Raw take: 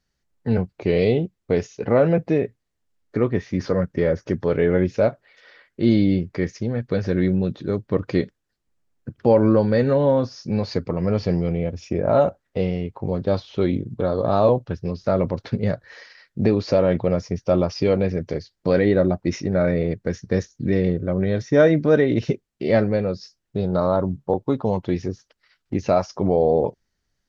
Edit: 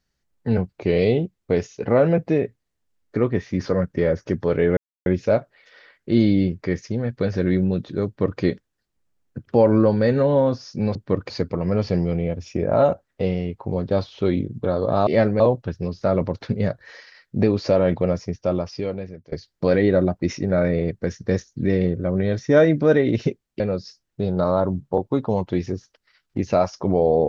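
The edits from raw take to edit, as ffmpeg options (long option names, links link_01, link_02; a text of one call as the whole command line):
ffmpeg -i in.wav -filter_complex "[0:a]asplit=8[link_01][link_02][link_03][link_04][link_05][link_06][link_07][link_08];[link_01]atrim=end=4.77,asetpts=PTS-STARTPTS,afade=type=out:start_time=4.766:duration=0.004:curve=hsin,apad=pad_dur=0.29[link_09];[link_02]atrim=start=4.77:end=10.662,asetpts=PTS-STARTPTS,afade=type=in:duration=0.004:curve=hsin[link_10];[link_03]atrim=start=7.768:end=8.122[link_11];[link_04]atrim=start=10.658:end=14.432[link_12];[link_05]atrim=start=22.628:end=22.962[link_13];[link_06]atrim=start=14.428:end=18.35,asetpts=PTS-STARTPTS,afade=type=out:start_time=2.652:duration=1.27:silence=0.0749894[link_14];[link_07]atrim=start=18.35:end=22.632,asetpts=PTS-STARTPTS,afade=type=in:duration=0.004:curve=hsin:silence=0.0749894[link_15];[link_08]atrim=start=22.958[link_16];[link_09][link_10]concat=n=2:v=0:a=1[link_17];[link_17][link_11]acrossfade=duration=0.004:curve1=hsin:curve2=hsin[link_18];[link_18][link_12]acrossfade=duration=0.004:curve1=hsin:curve2=hsin[link_19];[link_19][link_13]acrossfade=duration=0.004:curve1=hsin:curve2=hsin[link_20];[link_14][link_15]concat=n=2:v=0:a=1[link_21];[link_20][link_21]acrossfade=duration=0.004:curve1=hsin:curve2=hsin[link_22];[link_22][link_16]acrossfade=duration=0.004:curve1=hsin:curve2=hsin" out.wav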